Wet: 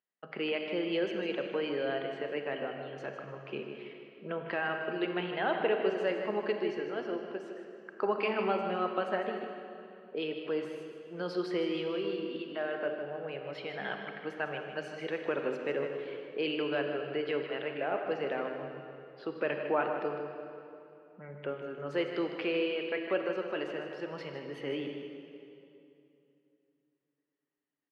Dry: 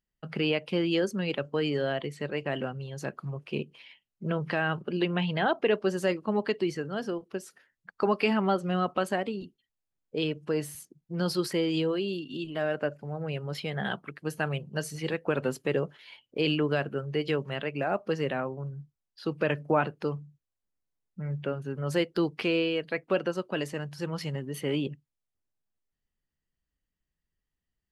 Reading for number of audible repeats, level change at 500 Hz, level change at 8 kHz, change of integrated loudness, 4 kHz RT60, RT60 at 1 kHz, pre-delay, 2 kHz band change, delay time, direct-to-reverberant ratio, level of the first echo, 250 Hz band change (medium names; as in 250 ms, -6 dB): 2, -2.5 dB, under -20 dB, -4.0 dB, 2.2 s, 2.6 s, 32 ms, -3.0 dB, 154 ms, 3.5 dB, -9.5 dB, -6.5 dB